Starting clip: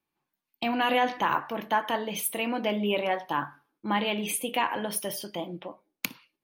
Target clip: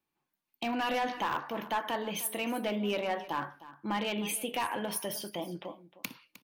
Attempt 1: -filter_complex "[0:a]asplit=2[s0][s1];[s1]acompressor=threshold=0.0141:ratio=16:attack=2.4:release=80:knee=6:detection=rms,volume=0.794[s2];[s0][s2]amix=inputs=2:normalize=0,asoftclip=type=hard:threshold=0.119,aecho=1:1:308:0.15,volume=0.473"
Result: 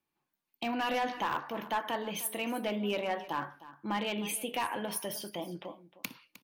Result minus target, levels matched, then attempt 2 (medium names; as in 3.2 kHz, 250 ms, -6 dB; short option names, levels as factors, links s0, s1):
compression: peak gain reduction +6 dB
-filter_complex "[0:a]asplit=2[s0][s1];[s1]acompressor=threshold=0.0299:ratio=16:attack=2.4:release=80:knee=6:detection=rms,volume=0.794[s2];[s0][s2]amix=inputs=2:normalize=0,asoftclip=type=hard:threshold=0.119,aecho=1:1:308:0.15,volume=0.473"